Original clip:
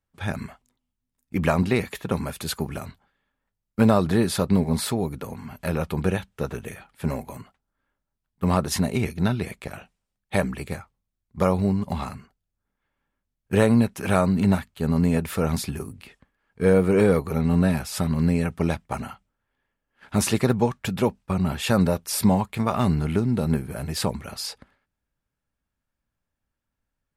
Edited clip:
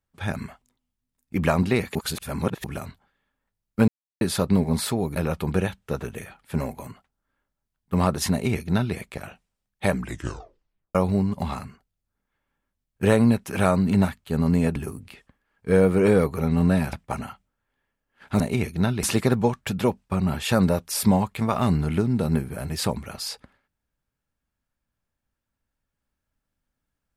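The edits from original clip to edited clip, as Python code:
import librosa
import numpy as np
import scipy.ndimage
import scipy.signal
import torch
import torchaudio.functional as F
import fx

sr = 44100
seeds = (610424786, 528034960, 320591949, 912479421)

y = fx.edit(x, sr, fx.reverse_span(start_s=1.95, length_s=0.69),
    fx.silence(start_s=3.88, length_s=0.33),
    fx.cut(start_s=5.16, length_s=0.5),
    fx.duplicate(start_s=8.82, length_s=0.63, to_s=20.21),
    fx.tape_stop(start_s=10.47, length_s=0.98),
    fx.cut(start_s=15.26, length_s=0.43),
    fx.cut(start_s=17.86, length_s=0.88), tone=tone)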